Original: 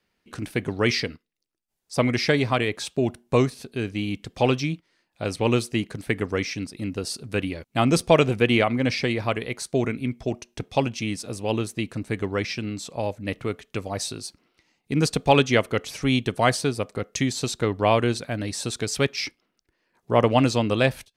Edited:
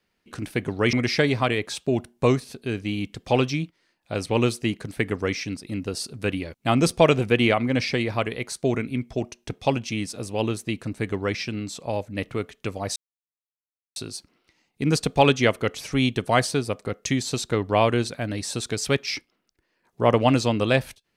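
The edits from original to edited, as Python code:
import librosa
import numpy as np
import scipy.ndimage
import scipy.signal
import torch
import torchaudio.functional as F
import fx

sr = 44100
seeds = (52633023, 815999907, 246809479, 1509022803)

y = fx.edit(x, sr, fx.cut(start_s=0.93, length_s=1.1),
    fx.insert_silence(at_s=14.06, length_s=1.0), tone=tone)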